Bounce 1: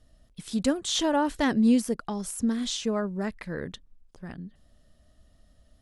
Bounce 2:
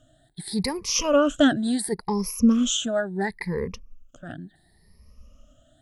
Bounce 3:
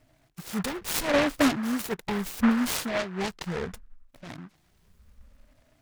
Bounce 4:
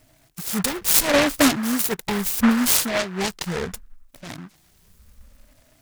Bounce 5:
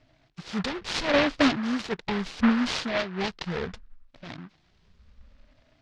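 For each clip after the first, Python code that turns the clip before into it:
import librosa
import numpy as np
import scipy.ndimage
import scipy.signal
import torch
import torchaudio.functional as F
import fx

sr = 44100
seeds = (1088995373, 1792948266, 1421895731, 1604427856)

y1 = fx.spec_ripple(x, sr, per_octave=0.85, drift_hz=0.71, depth_db=23)
y2 = fx.noise_mod_delay(y1, sr, seeds[0], noise_hz=1200.0, depth_ms=0.17)
y2 = F.gain(torch.from_numpy(y2), -4.0).numpy()
y3 = fx.high_shelf(y2, sr, hz=4900.0, db=11.5)
y3 = F.gain(torch.from_numpy(y3), 4.5).numpy()
y4 = scipy.signal.sosfilt(scipy.signal.butter(4, 4600.0, 'lowpass', fs=sr, output='sos'), y3)
y4 = F.gain(torch.from_numpy(y4), -4.0).numpy()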